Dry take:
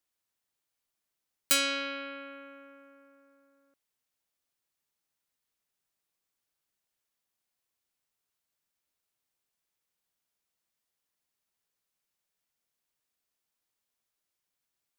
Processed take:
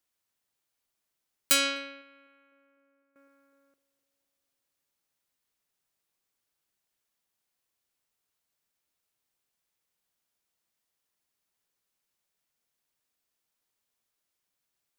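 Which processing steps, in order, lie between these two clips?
band-passed feedback delay 252 ms, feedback 65%, band-pass 410 Hz, level -12 dB; 1.64–3.16 s: upward expansion 2.5:1, over -41 dBFS; trim +2 dB

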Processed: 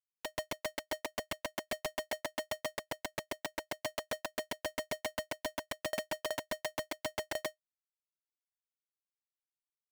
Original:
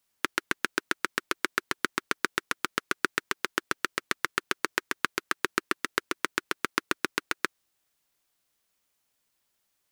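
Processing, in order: rattle on loud lows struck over -37 dBFS, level -12 dBFS; low-pass 4.1 kHz 12 dB/octave; dynamic bell 1.9 kHz, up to +4 dB, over -40 dBFS, Q 0.92; waveshaping leveller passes 5; peak limiter -9 dBFS, peak gain reduction 6 dB; level held to a coarse grid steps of 16 dB; saturation -28 dBFS, distortion -14 dB; echo that smears into a reverb 594 ms, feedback 43%, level -15 dB; Schmitt trigger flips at -45 dBFS; polarity switched at an audio rate 620 Hz; trim +10 dB

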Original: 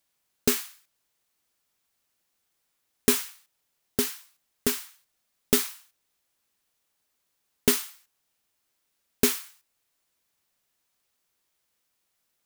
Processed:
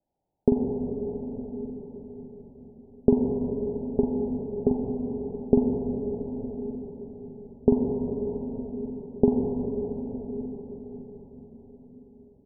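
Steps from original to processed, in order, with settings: steep low-pass 880 Hz 96 dB/octave; doubling 44 ms -5 dB; multi-tap echo 43/96 ms -10/-17 dB; reverberation RT60 5.5 s, pre-delay 79 ms, DRR 0.5 dB; trim +4.5 dB

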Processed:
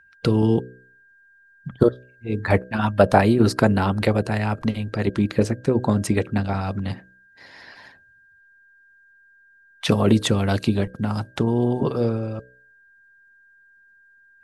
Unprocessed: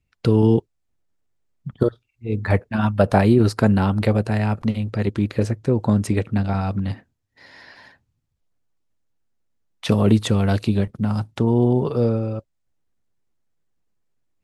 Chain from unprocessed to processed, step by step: de-hum 62.68 Hz, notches 10; whistle 1.6 kHz -49 dBFS; harmonic-percussive split percussive +7 dB; trim -3.5 dB

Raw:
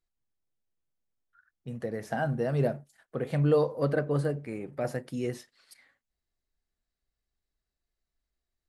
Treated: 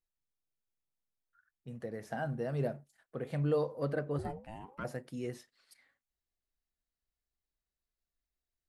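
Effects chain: 4.18–4.83 s: ring modulator 220 Hz -> 820 Hz; trim -7 dB

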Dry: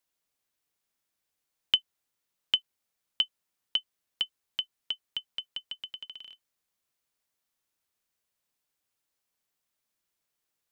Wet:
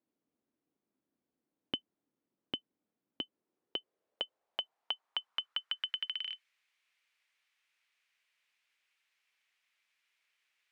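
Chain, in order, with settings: band-pass sweep 270 Hz -> 2.3 kHz, 3.17–6.43 s; trim +15 dB

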